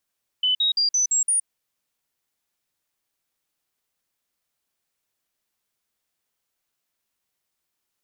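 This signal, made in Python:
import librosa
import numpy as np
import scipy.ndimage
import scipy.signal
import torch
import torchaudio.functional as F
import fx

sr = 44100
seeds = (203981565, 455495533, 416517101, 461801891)

y = fx.stepped_sweep(sr, from_hz=3010.0, direction='up', per_octave=3, tones=6, dwell_s=0.12, gap_s=0.05, level_db=-17.5)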